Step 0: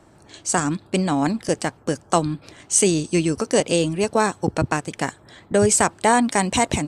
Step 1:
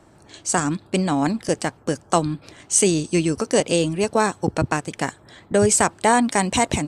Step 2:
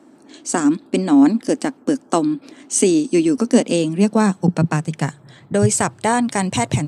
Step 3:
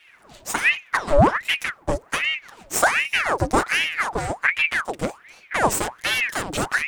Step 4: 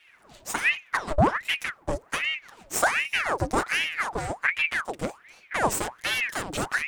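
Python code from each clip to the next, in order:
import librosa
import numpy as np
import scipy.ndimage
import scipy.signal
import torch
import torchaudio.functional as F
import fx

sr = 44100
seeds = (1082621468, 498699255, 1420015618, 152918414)

y1 = x
y2 = fx.filter_sweep_highpass(y1, sr, from_hz=260.0, to_hz=120.0, start_s=3.23, end_s=5.79, q=5.6)
y2 = y2 * librosa.db_to_amplitude(-1.5)
y3 = fx.lower_of_two(y2, sr, delay_ms=7.4)
y3 = fx.quant_dither(y3, sr, seeds[0], bits=12, dither='none')
y3 = fx.ring_lfo(y3, sr, carrier_hz=1400.0, swing_pct=80, hz=1.3)
y4 = fx.transformer_sat(y3, sr, knee_hz=120.0)
y4 = y4 * librosa.db_to_amplitude(-4.5)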